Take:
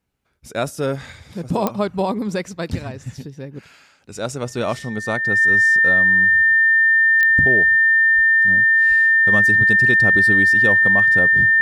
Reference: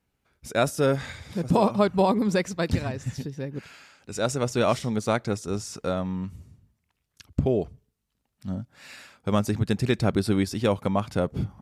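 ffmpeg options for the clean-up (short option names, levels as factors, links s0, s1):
-filter_complex "[0:a]adeclick=t=4,bandreject=f=1800:w=30,asplit=3[s0][s1][s2];[s0]afade=t=out:st=8.15:d=0.02[s3];[s1]highpass=f=140:w=0.5412,highpass=f=140:w=1.3066,afade=t=in:st=8.15:d=0.02,afade=t=out:st=8.27:d=0.02[s4];[s2]afade=t=in:st=8.27:d=0.02[s5];[s3][s4][s5]amix=inputs=3:normalize=0,asplit=3[s6][s7][s8];[s6]afade=t=out:st=8.88:d=0.02[s9];[s7]highpass=f=140:w=0.5412,highpass=f=140:w=1.3066,afade=t=in:st=8.88:d=0.02,afade=t=out:st=9:d=0.02[s10];[s8]afade=t=in:st=9:d=0.02[s11];[s9][s10][s11]amix=inputs=3:normalize=0"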